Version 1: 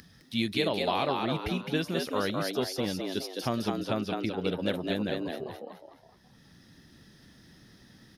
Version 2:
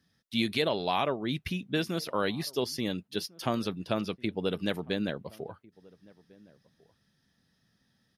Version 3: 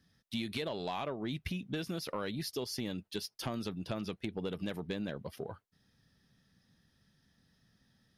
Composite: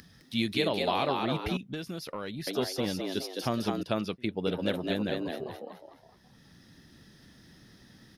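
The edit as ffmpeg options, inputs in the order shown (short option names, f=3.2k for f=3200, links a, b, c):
-filter_complex "[0:a]asplit=3[a][b][c];[a]atrim=end=1.572[d];[2:a]atrim=start=1.568:end=2.472[e];[b]atrim=start=2.468:end=3.832[f];[1:a]atrim=start=3.828:end=4.472[g];[c]atrim=start=4.468[h];[d][e]acrossfade=d=0.004:c1=hsin:c2=hsin[i];[i][f]acrossfade=d=0.004:c1=hsin:c2=hsin[j];[j][g]acrossfade=d=0.004:c1=hsin:c2=hsin[k];[k][h]acrossfade=d=0.004:c1=hsin:c2=hsin"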